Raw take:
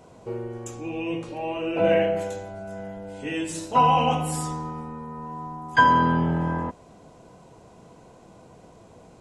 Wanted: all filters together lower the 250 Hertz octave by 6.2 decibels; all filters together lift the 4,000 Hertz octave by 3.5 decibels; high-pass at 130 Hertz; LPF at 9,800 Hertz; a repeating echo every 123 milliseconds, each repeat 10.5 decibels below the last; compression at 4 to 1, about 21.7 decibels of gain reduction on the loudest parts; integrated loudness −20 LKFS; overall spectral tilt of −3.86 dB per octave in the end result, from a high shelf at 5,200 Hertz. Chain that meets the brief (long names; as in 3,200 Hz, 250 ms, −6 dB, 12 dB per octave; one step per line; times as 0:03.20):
high-pass filter 130 Hz
low-pass filter 9,800 Hz
parametric band 250 Hz −8.5 dB
parametric band 4,000 Hz +3.5 dB
high-shelf EQ 5,200 Hz +5 dB
downward compressor 4 to 1, threshold −39 dBFS
repeating echo 123 ms, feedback 30%, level −10.5 dB
level +20 dB